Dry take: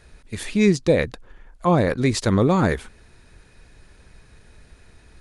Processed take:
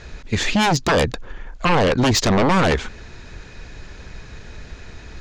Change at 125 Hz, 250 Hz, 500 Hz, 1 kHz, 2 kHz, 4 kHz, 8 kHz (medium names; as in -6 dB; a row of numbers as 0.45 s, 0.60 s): +0.5 dB, 0.0 dB, +0.5 dB, +6.5 dB, +6.5 dB, +10.0 dB, +7.0 dB